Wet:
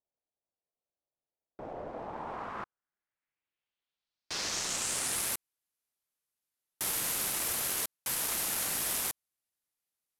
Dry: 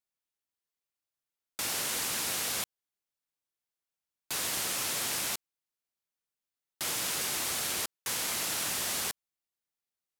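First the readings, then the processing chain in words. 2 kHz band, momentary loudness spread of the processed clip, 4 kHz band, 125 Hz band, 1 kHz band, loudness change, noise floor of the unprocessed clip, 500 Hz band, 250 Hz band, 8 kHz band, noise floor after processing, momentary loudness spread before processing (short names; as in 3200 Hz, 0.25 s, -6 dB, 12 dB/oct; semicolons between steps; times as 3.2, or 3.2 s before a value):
-3.5 dB, 13 LU, -4.0 dB, -1.0 dB, -0.5 dB, -1.0 dB, under -85 dBFS, 0.0 dB, -1.0 dB, -1.0 dB, under -85 dBFS, 6 LU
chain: self-modulated delay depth 0.25 ms; low-pass sweep 650 Hz -> 12000 Hz, 1.85–5.36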